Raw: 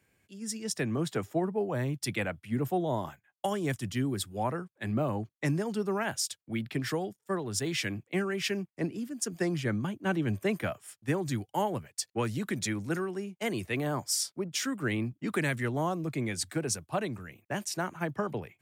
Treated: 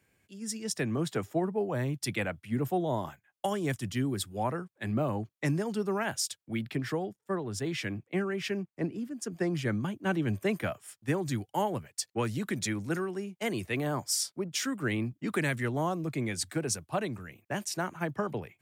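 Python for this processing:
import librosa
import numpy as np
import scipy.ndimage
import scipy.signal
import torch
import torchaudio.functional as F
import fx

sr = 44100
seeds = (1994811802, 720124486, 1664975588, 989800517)

y = fx.high_shelf(x, sr, hz=3000.0, db=-8.5, at=(6.75, 9.55))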